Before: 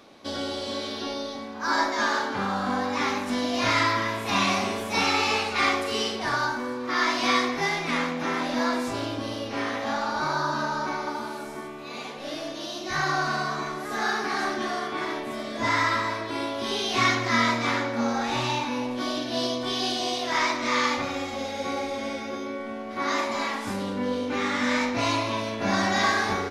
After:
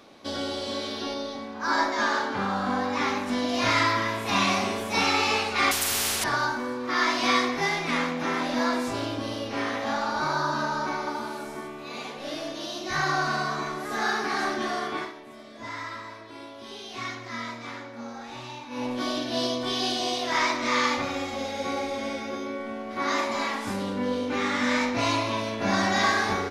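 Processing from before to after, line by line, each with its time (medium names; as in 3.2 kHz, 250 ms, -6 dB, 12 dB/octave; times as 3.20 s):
1.14–3.49 s: treble shelf 5.8 kHz -4.5 dB
5.71–6.24 s: spectrum-flattening compressor 10:1
14.96–18.85 s: dip -12.5 dB, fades 0.16 s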